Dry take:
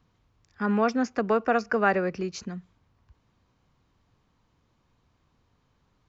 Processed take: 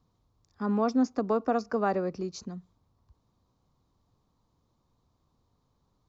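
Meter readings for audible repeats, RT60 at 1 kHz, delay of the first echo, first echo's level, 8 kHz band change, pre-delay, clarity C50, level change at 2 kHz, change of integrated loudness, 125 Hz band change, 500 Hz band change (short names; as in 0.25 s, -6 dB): none, none, none, none, n/a, none, none, -13.0 dB, -2.5 dB, -3.0 dB, -3.5 dB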